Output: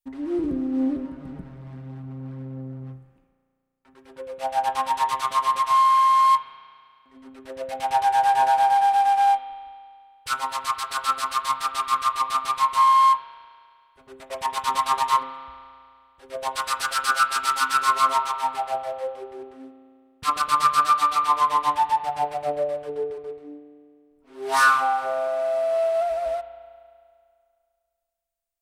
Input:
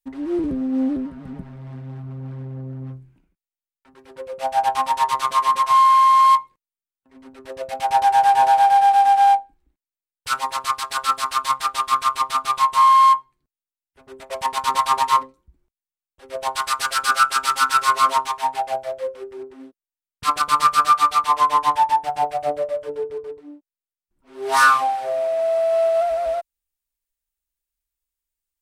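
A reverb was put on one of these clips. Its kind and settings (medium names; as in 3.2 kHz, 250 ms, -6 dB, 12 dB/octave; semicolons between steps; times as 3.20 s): spring tank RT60 2.2 s, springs 34 ms, chirp 75 ms, DRR 9.5 dB; trim -3.5 dB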